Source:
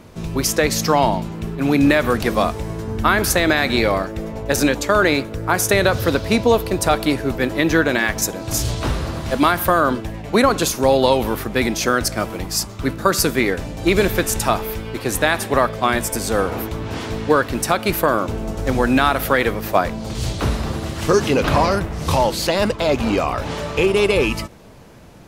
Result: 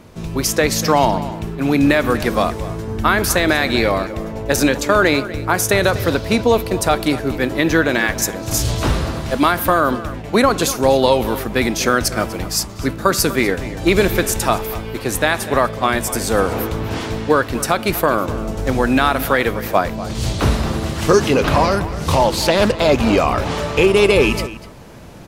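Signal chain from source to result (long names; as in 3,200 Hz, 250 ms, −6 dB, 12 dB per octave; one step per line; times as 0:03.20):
slap from a distant wall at 42 metres, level −15 dB
automatic gain control gain up to 6 dB
0:22.11–0:22.75: highs frequency-modulated by the lows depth 0.23 ms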